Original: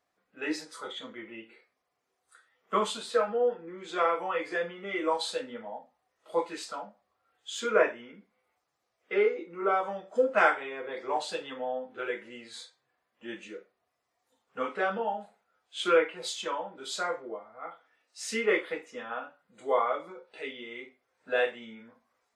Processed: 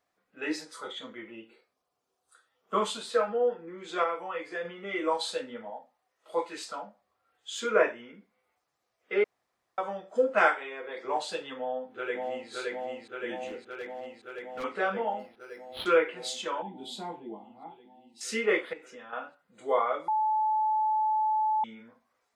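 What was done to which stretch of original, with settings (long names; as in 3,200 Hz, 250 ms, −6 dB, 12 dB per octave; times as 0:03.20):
0:01.31–0:02.78: parametric band 2,000 Hz −10.5 dB 0.55 octaves
0:04.04–0:04.65: clip gain −4.5 dB
0:05.70–0:06.56: low-shelf EQ 220 Hz −9 dB
0:09.24–0:09.78: fill with room tone
0:10.48–0:11.05: high-pass filter 370 Hz 6 dB per octave
0:11.57–0:12.50: delay throw 570 ms, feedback 80%, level −1.5 dB
0:13.47–0:14.64: hard clipping −33.5 dBFS
0:15.19–0:15.86: linearly interpolated sample-rate reduction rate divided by 6×
0:16.62–0:18.21: drawn EQ curve 100 Hz 0 dB, 200 Hz +10 dB, 350 Hz +3 dB, 550 Hz −16 dB, 850 Hz +5 dB, 1,300 Hz −23 dB, 2,300 Hz −12 dB, 3,400 Hz 0 dB, 5,900 Hz −14 dB, 11,000 Hz −3 dB
0:18.73–0:19.13: downward compressor 2.5 to 1, threshold −46 dBFS
0:20.08–0:21.64: beep over 865 Hz −23.5 dBFS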